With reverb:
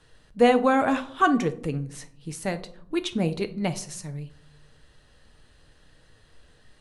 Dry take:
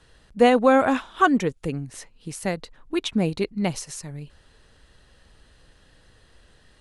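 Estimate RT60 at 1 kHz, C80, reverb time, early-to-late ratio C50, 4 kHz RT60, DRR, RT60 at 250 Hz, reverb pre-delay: 0.55 s, 20.0 dB, 0.60 s, 15.5 dB, 0.35 s, 8.5 dB, 1.0 s, 6 ms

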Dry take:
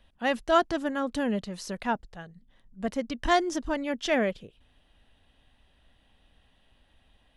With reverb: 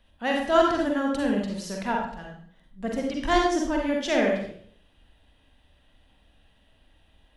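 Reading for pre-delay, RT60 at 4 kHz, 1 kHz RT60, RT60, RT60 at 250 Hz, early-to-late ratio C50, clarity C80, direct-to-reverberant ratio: 39 ms, 0.50 s, 0.55 s, 0.60 s, 0.60 s, 2.0 dB, 6.0 dB, -0.5 dB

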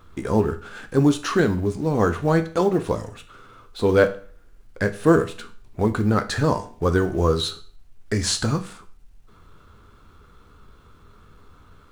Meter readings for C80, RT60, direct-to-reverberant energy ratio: 19.0 dB, 0.40 s, 8.0 dB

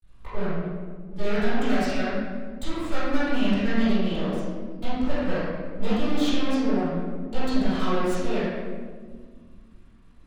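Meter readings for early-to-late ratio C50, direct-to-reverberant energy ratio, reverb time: -4.5 dB, -15.0 dB, 1.7 s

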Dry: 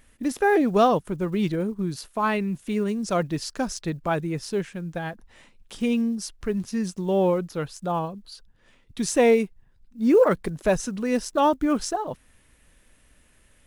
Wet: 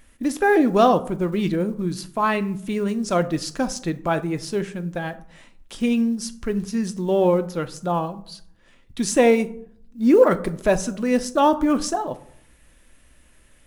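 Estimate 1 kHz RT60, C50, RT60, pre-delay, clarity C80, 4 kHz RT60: 0.60 s, 16.5 dB, 0.65 s, 3 ms, 20.5 dB, 0.30 s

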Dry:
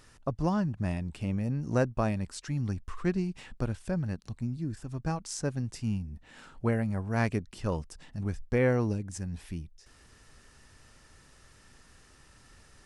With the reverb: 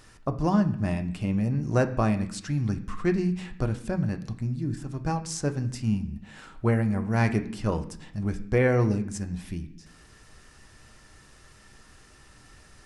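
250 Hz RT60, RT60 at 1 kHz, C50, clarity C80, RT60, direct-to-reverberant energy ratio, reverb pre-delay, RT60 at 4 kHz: 0.90 s, 0.70 s, 13.5 dB, 16.0 dB, 0.70 s, 6.0 dB, 3 ms, 0.95 s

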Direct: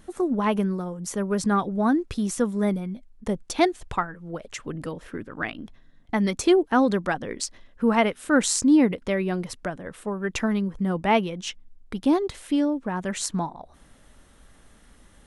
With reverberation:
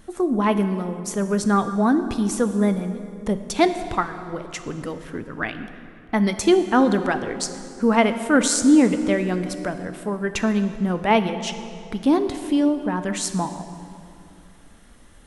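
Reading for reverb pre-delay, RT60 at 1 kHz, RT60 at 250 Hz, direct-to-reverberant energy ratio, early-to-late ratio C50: 3 ms, 2.4 s, 3.1 s, 9.0 dB, 10.5 dB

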